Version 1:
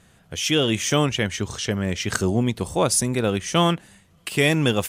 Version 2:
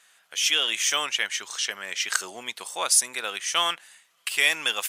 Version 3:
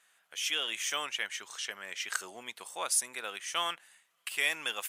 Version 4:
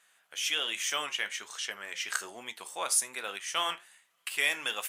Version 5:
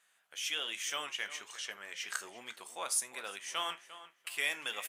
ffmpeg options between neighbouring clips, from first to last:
-af "highpass=1.3k,volume=2dB"
-af "equalizer=f=5k:w=0.94:g=-5,volume=-7dB"
-af "flanger=delay=9.9:depth=6.4:regen=-66:speed=1.2:shape=triangular,volume=6dB"
-filter_complex "[0:a]asplit=2[a][b];[b]adelay=350,lowpass=f=3.2k:p=1,volume=-14dB,asplit=2[c][d];[d]adelay=350,lowpass=f=3.2k:p=1,volume=0.25,asplit=2[e][f];[f]adelay=350,lowpass=f=3.2k:p=1,volume=0.25[g];[a][c][e][g]amix=inputs=4:normalize=0,volume=-5.5dB"

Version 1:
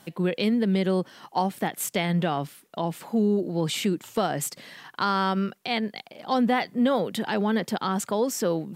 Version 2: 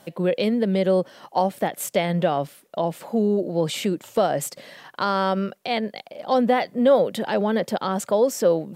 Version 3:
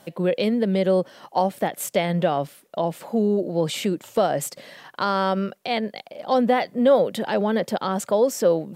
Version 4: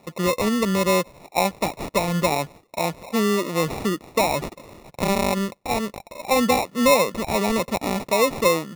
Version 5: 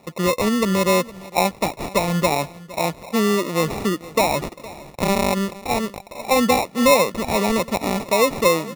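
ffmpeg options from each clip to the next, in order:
-af "equalizer=f=570:t=o:w=0.61:g=10.5"
-af anull
-af "acrusher=samples=28:mix=1:aa=0.000001"
-af "aecho=1:1:463|926:0.112|0.0213,volume=2dB"

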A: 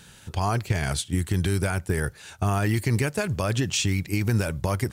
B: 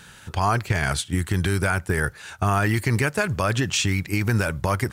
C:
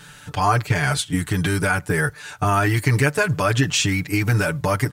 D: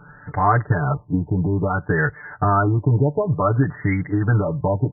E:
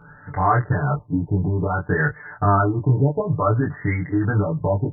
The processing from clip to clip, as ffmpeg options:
-af "equalizer=f=1.4k:t=o:w=1.5:g=7,volume=1dB"
-af "aecho=1:1:6.8:0.99"
-af "afftfilt=real='re*lt(b*sr/1024,980*pow(2200/980,0.5+0.5*sin(2*PI*0.57*pts/sr)))':imag='im*lt(b*sr/1024,980*pow(2200/980,0.5+0.5*sin(2*PI*0.57*pts/sr)))':win_size=1024:overlap=0.75,volume=1.5dB"
-af "flanger=delay=18.5:depth=4.6:speed=0.87,volume=2dB"

